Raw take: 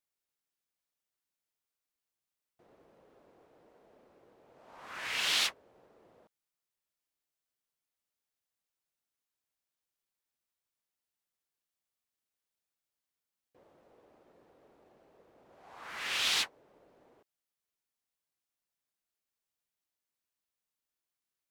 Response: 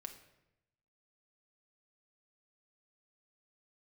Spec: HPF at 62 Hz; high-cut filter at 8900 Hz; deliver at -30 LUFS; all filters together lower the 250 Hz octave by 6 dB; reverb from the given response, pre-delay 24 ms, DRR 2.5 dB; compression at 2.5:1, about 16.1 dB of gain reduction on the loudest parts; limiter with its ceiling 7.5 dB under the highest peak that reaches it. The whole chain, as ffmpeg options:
-filter_complex "[0:a]highpass=62,lowpass=8.9k,equalizer=f=250:t=o:g=-8.5,acompressor=threshold=-52dB:ratio=2.5,alimiter=level_in=17.5dB:limit=-24dB:level=0:latency=1,volume=-17.5dB,asplit=2[a][b];[1:a]atrim=start_sample=2205,adelay=24[c];[b][c]afir=irnorm=-1:irlink=0,volume=2dB[d];[a][d]amix=inputs=2:normalize=0,volume=24dB"

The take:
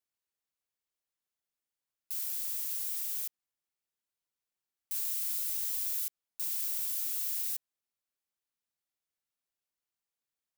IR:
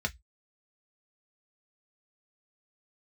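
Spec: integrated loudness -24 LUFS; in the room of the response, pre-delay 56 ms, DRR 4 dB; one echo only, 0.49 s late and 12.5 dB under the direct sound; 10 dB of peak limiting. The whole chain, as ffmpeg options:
-filter_complex "[0:a]alimiter=level_in=5dB:limit=-24dB:level=0:latency=1,volume=-5dB,aecho=1:1:490:0.237,asplit=2[a][b];[1:a]atrim=start_sample=2205,adelay=56[c];[b][c]afir=irnorm=-1:irlink=0,volume=-9.5dB[d];[a][d]amix=inputs=2:normalize=0,volume=12dB"

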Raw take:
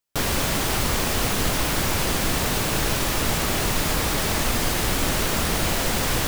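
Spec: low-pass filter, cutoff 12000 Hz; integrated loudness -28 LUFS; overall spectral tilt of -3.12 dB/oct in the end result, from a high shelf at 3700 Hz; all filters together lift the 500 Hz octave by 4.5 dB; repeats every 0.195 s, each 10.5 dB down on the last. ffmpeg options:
-af "lowpass=12k,equalizer=f=500:t=o:g=5.5,highshelf=f=3.7k:g=5.5,aecho=1:1:195|390|585:0.299|0.0896|0.0269,volume=-8dB"

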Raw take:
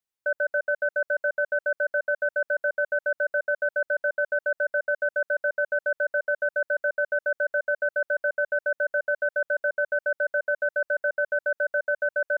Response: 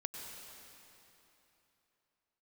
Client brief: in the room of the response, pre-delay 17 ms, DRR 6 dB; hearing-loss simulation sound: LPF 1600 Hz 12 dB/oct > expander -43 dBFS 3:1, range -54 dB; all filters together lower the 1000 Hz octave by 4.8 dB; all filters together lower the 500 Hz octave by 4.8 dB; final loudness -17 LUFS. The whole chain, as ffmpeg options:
-filter_complex "[0:a]equalizer=f=500:t=o:g=-4,equalizer=f=1k:t=o:g=-5,asplit=2[a][b];[1:a]atrim=start_sample=2205,adelay=17[c];[b][c]afir=irnorm=-1:irlink=0,volume=-5.5dB[d];[a][d]amix=inputs=2:normalize=0,lowpass=1.6k,agate=range=-54dB:threshold=-43dB:ratio=3,volume=12dB"

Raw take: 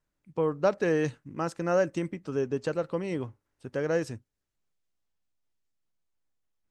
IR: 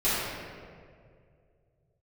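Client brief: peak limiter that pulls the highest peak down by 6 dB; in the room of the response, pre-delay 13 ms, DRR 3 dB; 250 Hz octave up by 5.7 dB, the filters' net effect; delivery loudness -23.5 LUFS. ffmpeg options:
-filter_complex "[0:a]equalizer=f=250:t=o:g=8.5,alimiter=limit=-17dB:level=0:latency=1,asplit=2[a][b];[1:a]atrim=start_sample=2205,adelay=13[c];[b][c]afir=irnorm=-1:irlink=0,volume=-17dB[d];[a][d]amix=inputs=2:normalize=0,volume=4dB"

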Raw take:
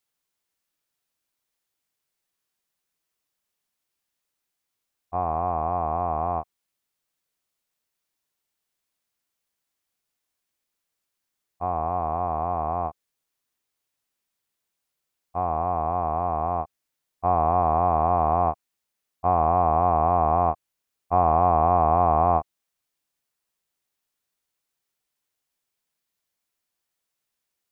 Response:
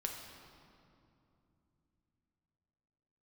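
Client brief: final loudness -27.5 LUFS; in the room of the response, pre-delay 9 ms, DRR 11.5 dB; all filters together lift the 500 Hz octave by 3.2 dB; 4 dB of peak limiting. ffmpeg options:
-filter_complex "[0:a]equalizer=f=500:t=o:g=5,alimiter=limit=-10dB:level=0:latency=1,asplit=2[a][b];[1:a]atrim=start_sample=2205,adelay=9[c];[b][c]afir=irnorm=-1:irlink=0,volume=-12dB[d];[a][d]amix=inputs=2:normalize=0,volume=-4dB"

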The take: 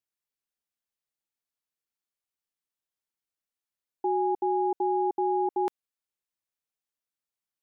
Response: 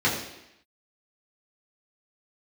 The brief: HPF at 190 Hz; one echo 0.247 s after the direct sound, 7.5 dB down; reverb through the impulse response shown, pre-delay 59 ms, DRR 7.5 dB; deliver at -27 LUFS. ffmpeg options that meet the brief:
-filter_complex "[0:a]highpass=190,aecho=1:1:247:0.422,asplit=2[a][b];[1:a]atrim=start_sample=2205,adelay=59[c];[b][c]afir=irnorm=-1:irlink=0,volume=-22.5dB[d];[a][d]amix=inputs=2:normalize=0"

